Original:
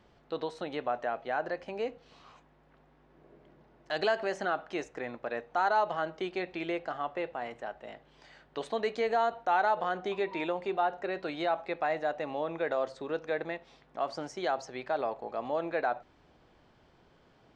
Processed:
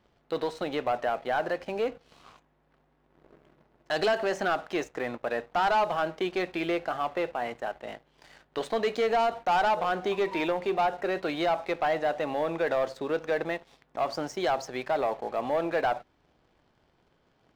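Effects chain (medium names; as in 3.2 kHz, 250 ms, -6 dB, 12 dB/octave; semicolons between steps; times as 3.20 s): waveshaping leveller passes 2; trim -1.5 dB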